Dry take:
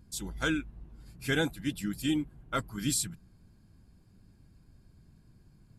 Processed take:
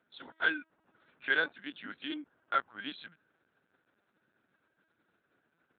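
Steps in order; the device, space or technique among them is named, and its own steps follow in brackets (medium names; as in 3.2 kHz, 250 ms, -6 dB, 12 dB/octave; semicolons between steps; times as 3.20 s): talking toy (LPC vocoder at 8 kHz pitch kept; high-pass 510 Hz 12 dB/octave; peaking EQ 1.5 kHz +10 dB 0.42 oct); trim -2 dB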